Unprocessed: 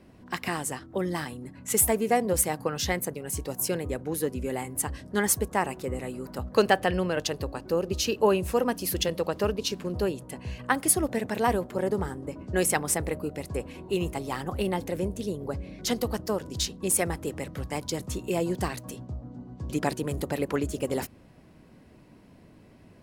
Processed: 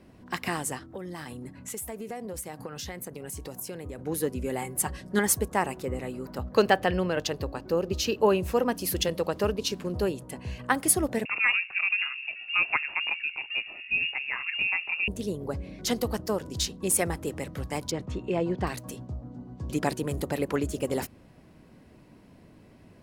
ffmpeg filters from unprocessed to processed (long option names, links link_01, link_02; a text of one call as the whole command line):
ffmpeg -i in.wav -filter_complex "[0:a]asplit=3[link_01][link_02][link_03];[link_01]afade=type=out:start_time=0.78:duration=0.02[link_04];[link_02]acompressor=threshold=-34dB:ratio=6:attack=3.2:release=140:knee=1:detection=peak,afade=type=in:start_time=0.78:duration=0.02,afade=type=out:start_time=3.97:duration=0.02[link_05];[link_03]afade=type=in:start_time=3.97:duration=0.02[link_06];[link_04][link_05][link_06]amix=inputs=3:normalize=0,asettb=1/sr,asplit=3[link_07][link_08][link_09];[link_07]atrim=end=4.614[link_10];[link_08]atrim=start=4.61:end=5.19,asetpts=PTS-STARTPTS,afade=type=in:duration=0.004:curve=qsin,afade=type=out:start_time=0.576:duration=0.004:curve=qsin,aecho=1:1:5.4:0.64,atrim=end_sample=25578[link_11];[link_09]atrim=start=5.186[link_12];[link_10][link_11]acrossfade=duration=0.004:curve1=hsin:curve2=qsin[link_13];[link_13][link_12]acrossfade=duration=0.004:curve1=qsin:curve2=hsin,asettb=1/sr,asplit=3[link_14][link_15][link_16];[link_14]atrim=end=5.834[link_17];[link_15]atrim=start=5.83:end=8.75,asetpts=PTS-STARTPTS,afade=type=in:duration=0.004:curve=qsin,afade=type=out:start_time=2.916:duration=0.004:curve=qsin,equalizer=frequency=9500:width=1.3:gain=-6.5[link_18];[link_16]atrim=start=8.746[link_19];[link_17][link_18]acrossfade=duration=0.004:curve1=hsin:curve2=qsin[link_20];[link_20][link_19]acrossfade=duration=0.004:curve1=qsin:curve2=hsin,asettb=1/sr,asplit=3[link_21][link_22][link_23];[link_21]atrim=end=11.254[link_24];[link_22]atrim=start=11.25:end=15.08,asetpts=PTS-STARTPTS,afade=type=in:duration=0.004:curve=qsin,afade=type=out:start_time=3.826:duration=0.004:curve=qsin,lowpass=frequency=2500:width_type=q:width=0.5098,lowpass=frequency=2500:width_type=q:width=0.6013,lowpass=frequency=2500:width_type=q:width=0.9,lowpass=frequency=2500:width_type=q:width=2.563,afreqshift=-2900[link_25];[link_23]atrim=start=15.076[link_26];[link_24][link_25]acrossfade=duration=0.004:curve1=hsin:curve2=qsin[link_27];[link_27][link_26]acrossfade=duration=0.004:curve1=qsin:curve2=hsin,asettb=1/sr,asplit=3[link_28][link_29][link_30];[link_28]atrim=end=17.914[link_31];[link_29]atrim=start=17.91:end=18.67,asetpts=PTS-STARTPTS,afade=type=in:duration=0.004:curve=qsin,afade=type=out:start_time=0.756:duration=0.004:curve=qsin,lowpass=2900[link_32];[link_30]atrim=start=18.666[link_33];[link_31][link_32]acrossfade=duration=0.004:curve1=hsin:curve2=qsin[link_34];[link_34][link_33]acrossfade=duration=0.004:curve1=qsin:curve2=hsin" out.wav